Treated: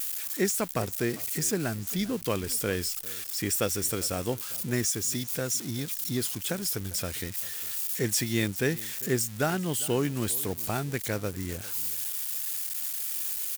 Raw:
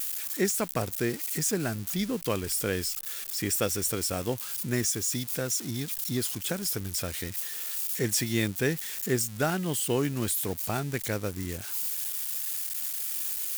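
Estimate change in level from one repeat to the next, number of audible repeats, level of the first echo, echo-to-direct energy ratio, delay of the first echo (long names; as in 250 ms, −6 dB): repeats not evenly spaced, 1, −20.0 dB, −20.0 dB, 400 ms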